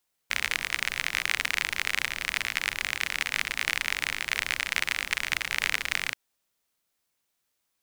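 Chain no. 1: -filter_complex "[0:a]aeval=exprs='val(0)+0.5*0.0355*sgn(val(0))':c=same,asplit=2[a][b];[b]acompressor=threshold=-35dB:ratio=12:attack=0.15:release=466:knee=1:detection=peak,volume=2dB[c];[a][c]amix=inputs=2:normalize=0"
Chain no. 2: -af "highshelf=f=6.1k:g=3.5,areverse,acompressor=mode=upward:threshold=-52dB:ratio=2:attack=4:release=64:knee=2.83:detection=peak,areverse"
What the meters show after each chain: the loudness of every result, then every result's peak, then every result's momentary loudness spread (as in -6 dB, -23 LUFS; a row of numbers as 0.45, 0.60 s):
-25.5, -27.5 LUFS; -3.5, -3.0 dBFS; 1, 2 LU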